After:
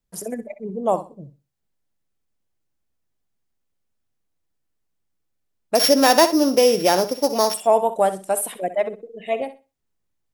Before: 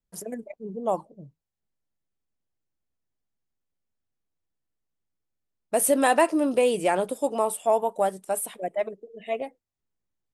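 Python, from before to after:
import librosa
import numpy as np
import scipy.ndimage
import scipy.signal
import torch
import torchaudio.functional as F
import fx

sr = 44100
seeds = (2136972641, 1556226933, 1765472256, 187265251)

y = fx.sample_sort(x, sr, block=8, at=(5.75, 7.54))
y = fx.room_flutter(y, sr, wall_m=10.8, rt60_s=0.29)
y = y * 10.0 ** (5.5 / 20.0)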